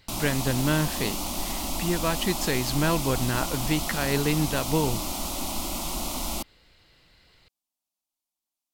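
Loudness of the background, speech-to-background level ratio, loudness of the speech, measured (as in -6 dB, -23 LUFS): -30.0 LUFS, 2.5 dB, -27.5 LUFS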